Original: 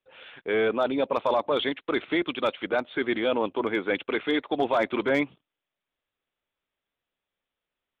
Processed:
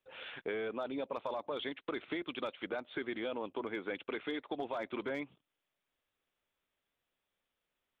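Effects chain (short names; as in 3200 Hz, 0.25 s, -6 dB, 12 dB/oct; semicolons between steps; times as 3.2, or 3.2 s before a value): compressor 6:1, threshold -36 dBFS, peak gain reduction 15.5 dB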